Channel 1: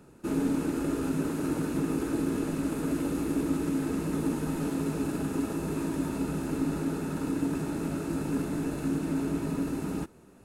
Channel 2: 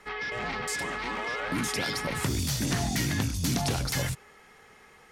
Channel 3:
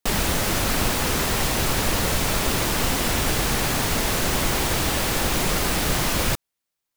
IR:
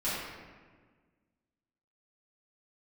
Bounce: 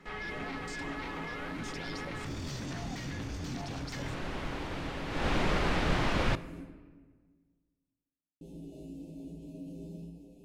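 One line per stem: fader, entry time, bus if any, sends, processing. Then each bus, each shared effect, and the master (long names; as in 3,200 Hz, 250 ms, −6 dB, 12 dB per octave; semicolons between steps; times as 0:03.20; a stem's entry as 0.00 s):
−13.5 dB, 0.00 s, muted 0:06.61–0:08.41, bus A, send −7 dB, Chebyshev band-stop filter 700–2,900 Hz, order 3; tuned comb filter 57 Hz, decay 0.27 s, harmonics odd, mix 90%; envelope flattener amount 50%
−5.0 dB, 0.00 s, bus A, no send, no processing
0:03.93 −23 dB → 0:04.17 −14.5 dB → 0:05.06 −14.5 dB → 0:05.28 −5.5 dB, 0.00 s, no bus, send −22.5 dB, low-pass filter 2,900 Hz 12 dB per octave
bus A: 0.0 dB, moving average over 4 samples; brickwall limiter −32 dBFS, peak gain reduction 10 dB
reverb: on, RT60 1.5 s, pre-delay 4 ms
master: no processing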